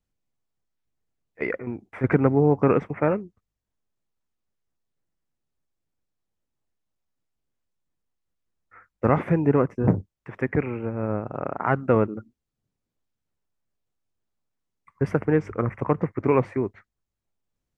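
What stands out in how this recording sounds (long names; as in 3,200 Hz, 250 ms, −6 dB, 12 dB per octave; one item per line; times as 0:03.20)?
background noise floor −84 dBFS
spectral slope −6.0 dB per octave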